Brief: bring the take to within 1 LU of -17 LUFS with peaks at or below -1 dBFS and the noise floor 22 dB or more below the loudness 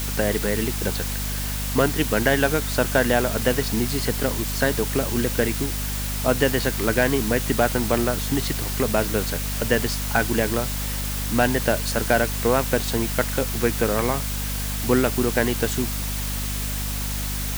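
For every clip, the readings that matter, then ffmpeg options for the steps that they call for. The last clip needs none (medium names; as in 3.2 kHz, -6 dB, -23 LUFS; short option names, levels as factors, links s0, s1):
hum 50 Hz; highest harmonic 250 Hz; hum level -26 dBFS; noise floor -27 dBFS; noise floor target -45 dBFS; loudness -22.5 LUFS; peak level -5.0 dBFS; loudness target -17.0 LUFS
-> -af "bandreject=f=50:t=h:w=6,bandreject=f=100:t=h:w=6,bandreject=f=150:t=h:w=6,bandreject=f=200:t=h:w=6,bandreject=f=250:t=h:w=6"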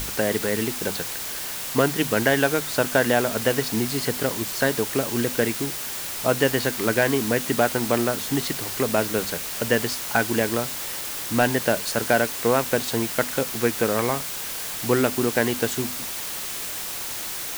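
hum not found; noise floor -31 dBFS; noise floor target -46 dBFS
-> -af "afftdn=nr=15:nf=-31"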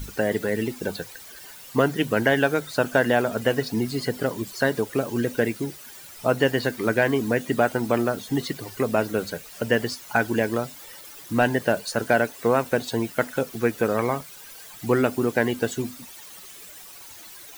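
noise floor -44 dBFS; noise floor target -47 dBFS
-> -af "afftdn=nr=6:nf=-44"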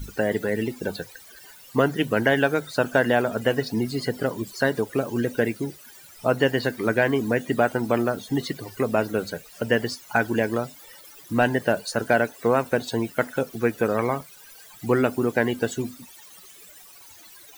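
noise floor -48 dBFS; loudness -24.5 LUFS; peak level -6.5 dBFS; loudness target -17.0 LUFS
-> -af "volume=2.37,alimiter=limit=0.891:level=0:latency=1"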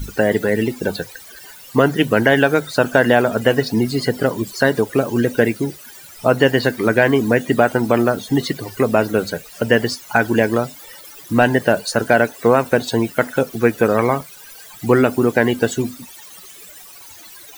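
loudness -17.5 LUFS; peak level -1.0 dBFS; noise floor -40 dBFS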